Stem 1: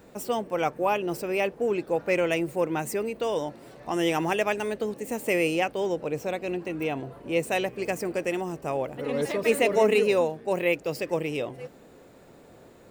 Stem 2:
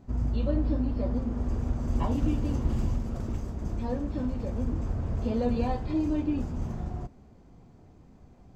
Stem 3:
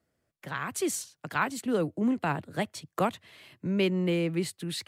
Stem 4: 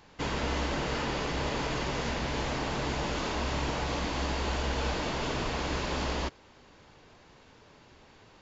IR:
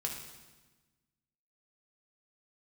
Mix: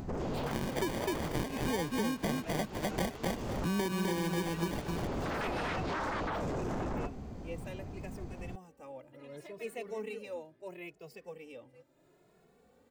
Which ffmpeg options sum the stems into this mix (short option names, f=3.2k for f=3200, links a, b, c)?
-filter_complex "[0:a]acompressor=mode=upward:threshold=-38dB:ratio=2.5,asplit=2[a][b];[b]adelay=2.3,afreqshift=0.73[c];[a][c]amix=inputs=2:normalize=1,adelay=150,volume=-16.5dB[d];[1:a]acompressor=mode=upward:threshold=-49dB:ratio=2.5,alimiter=level_in=1dB:limit=-24dB:level=0:latency=1:release=117,volume=-1dB,aeval=exprs='0.0562*sin(PI/2*4.47*val(0)/0.0562)':c=same,volume=-7dB[e];[2:a]acrusher=samples=33:mix=1:aa=0.000001,volume=1dB,asplit=3[f][g][h];[g]volume=-3.5dB[i];[3:a]volume=-16.5dB[j];[h]apad=whole_len=377302[k];[e][k]sidechaincompress=threshold=-40dB:ratio=8:attack=16:release=372[l];[i]aecho=0:1:255|510|765:1|0.17|0.0289[m];[d][l][f][j][m]amix=inputs=5:normalize=0,acompressor=threshold=-29dB:ratio=10"